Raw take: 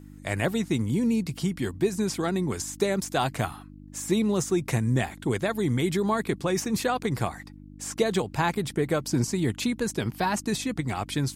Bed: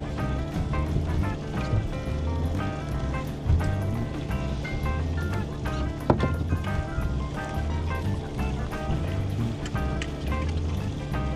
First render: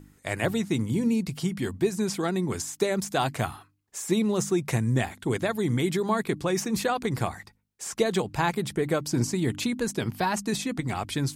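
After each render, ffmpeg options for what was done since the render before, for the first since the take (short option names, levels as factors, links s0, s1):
-af "bandreject=f=50:t=h:w=4,bandreject=f=100:t=h:w=4,bandreject=f=150:t=h:w=4,bandreject=f=200:t=h:w=4,bandreject=f=250:t=h:w=4,bandreject=f=300:t=h:w=4"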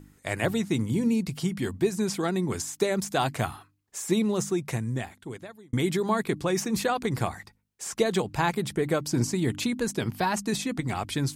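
-filter_complex "[0:a]asplit=2[s0][s1];[s0]atrim=end=5.73,asetpts=PTS-STARTPTS,afade=t=out:st=4.17:d=1.56[s2];[s1]atrim=start=5.73,asetpts=PTS-STARTPTS,afade=t=in:d=0.004:c=hsin[s3];[s2][s3]concat=n=2:v=0:a=1"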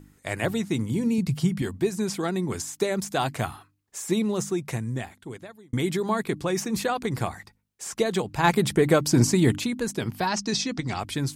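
-filter_complex "[0:a]asettb=1/sr,asplit=3[s0][s1][s2];[s0]atrim=end=1.184[s3];[s1]atrim=start=1.18:end=1.62,asetpts=PTS-STARTPTS,afade=t=in:d=0.004:c=qsin,afade=t=out:st=0.436:d=0.004:c=qsin,equalizer=f=130:w=1.5:g=10[s4];[s2]atrim=start=1.616[s5];[s3][s4]acrossfade=d=0.004:c1=hsin:c2=qsin[s6];[s6][s5]acrossfade=d=0.004:c1=qsin:c2=hsin,asplit=3[s7][s8][s9];[s7]afade=t=out:st=8.43:d=0.02[s10];[s8]acontrast=72,afade=t=in:st=8.43:d=0.02,afade=t=out:st=9.57:d=0.02[s11];[s9]afade=t=in:st=9.57:d=0.02[s12];[s10][s11][s12]amix=inputs=3:normalize=0,asettb=1/sr,asplit=3[s13][s14][s15];[s13]atrim=end=10.274[s16];[s14]atrim=start=10.27:end=11,asetpts=PTS-STARTPTS,afade=t=in:d=0.004:c=qsin,afade=t=out:st=0.726:d=0.004:c=qsin,lowpass=f=5400:t=q:w=3.9[s17];[s15]atrim=start=10.996[s18];[s16][s17]acrossfade=d=0.004:c1=hsin:c2=qsin[s19];[s19][s18]acrossfade=d=0.004:c1=qsin:c2=hsin"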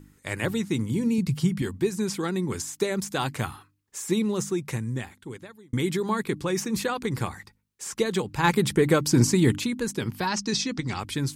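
-af "equalizer=f=680:t=o:w=0.28:g=-11"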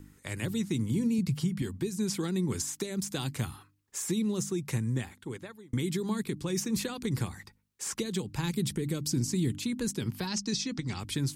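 -filter_complex "[0:a]acrossover=split=330|3000[s0][s1][s2];[s1]acompressor=threshold=0.0112:ratio=6[s3];[s0][s3][s2]amix=inputs=3:normalize=0,alimiter=limit=0.0944:level=0:latency=1:release=379"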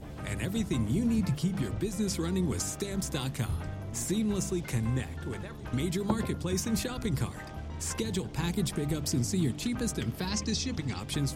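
-filter_complex "[1:a]volume=0.266[s0];[0:a][s0]amix=inputs=2:normalize=0"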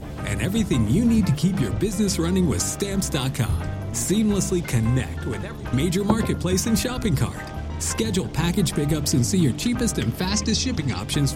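-af "volume=2.82"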